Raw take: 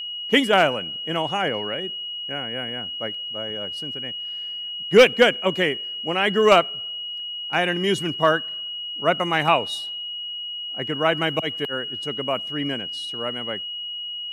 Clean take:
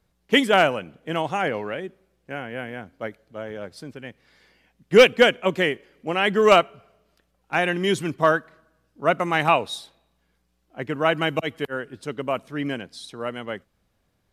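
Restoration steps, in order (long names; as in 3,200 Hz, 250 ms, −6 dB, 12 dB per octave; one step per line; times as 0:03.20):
notch filter 2,900 Hz, Q 30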